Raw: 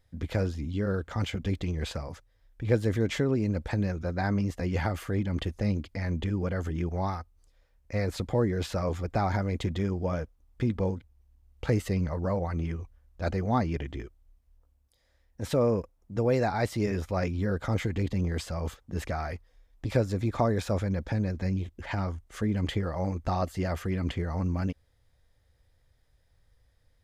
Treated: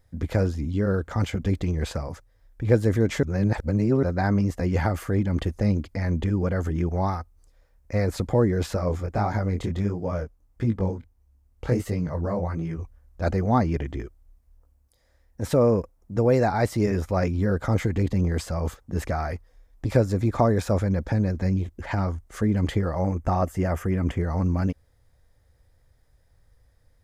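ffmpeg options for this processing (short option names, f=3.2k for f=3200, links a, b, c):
-filter_complex "[0:a]asplit=3[a][b][c];[a]afade=t=out:st=8.75:d=0.02[d];[b]flanger=delay=17.5:depth=7.4:speed=1.5,afade=t=in:st=8.75:d=0.02,afade=t=out:st=12.77:d=0.02[e];[c]afade=t=in:st=12.77:d=0.02[f];[d][e][f]amix=inputs=3:normalize=0,asettb=1/sr,asplit=3[g][h][i];[g]atrim=end=23.024[j];[h]atrim=start=23.02:end=24.21,asetpts=PTS-STARTPTS,afade=t=in:d=0.004:c=qsin,afade=t=out:st=1.186:d=0.004:c=qsin,equalizer=f=4.2k:w=3.4:g=-13[k];[i]atrim=start=24.206[l];[j][k]acrossfade=d=0.004:c1=hsin:c2=qsin[m];[m][l]acrossfade=d=0.004:c1=qsin:c2=hsin,asplit=3[n][o][p];[n]atrim=end=3.232[q];[o]atrim=start=3.228:end=4.032,asetpts=PTS-STARTPTS,areverse[r];[p]atrim=start=4.028[s];[q][r]acrossfade=d=0.004:c1=hsin:c2=hsin[t];[t][s]acrossfade=d=0.004:c1=hsin:c2=hsin,equalizer=f=3.2k:t=o:w=1.2:g=-7,volume=5.5dB"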